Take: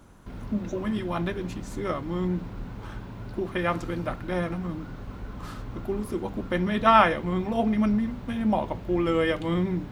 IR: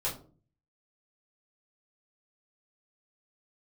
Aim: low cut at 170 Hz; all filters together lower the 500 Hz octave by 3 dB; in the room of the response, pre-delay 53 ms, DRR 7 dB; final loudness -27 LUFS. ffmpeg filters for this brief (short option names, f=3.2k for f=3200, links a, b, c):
-filter_complex "[0:a]highpass=170,equalizer=f=500:t=o:g=-4,asplit=2[a][b];[1:a]atrim=start_sample=2205,adelay=53[c];[b][c]afir=irnorm=-1:irlink=0,volume=-12dB[d];[a][d]amix=inputs=2:normalize=0,volume=0.5dB"